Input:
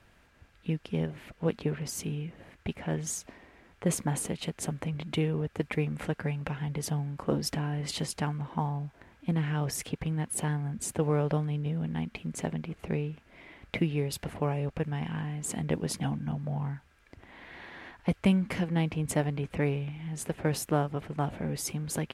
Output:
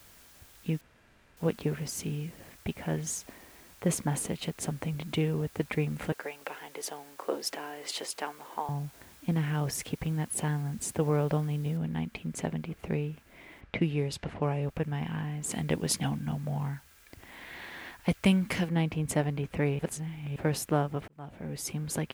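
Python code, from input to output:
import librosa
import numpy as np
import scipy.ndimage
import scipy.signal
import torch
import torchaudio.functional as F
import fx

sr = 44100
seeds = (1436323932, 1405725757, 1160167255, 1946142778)

y = fx.highpass(x, sr, hz=360.0, slope=24, at=(6.12, 8.69))
y = fx.noise_floor_step(y, sr, seeds[0], at_s=11.77, before_db=-57, after_db=-68, tilt_db=0.0)
y = fx.env_lowpass(y, sr, base_hz=2700.0, full_db=-23.5, at=(13.6, 14.61), fade=0.02)
y = fx.high_shelf(y, sr, hz=2200.0, db=7.5, at=(15.51, 18.69))
y = fx.edit(y, sr, fx.room_tone_fill(start_s=0.81, length_s=0.56),
    fx.reverse_span(start_s=19.79, length_s=0.57),
    fx.fade_in_span(start_s=21.08, length_s=0.71), tone=tone)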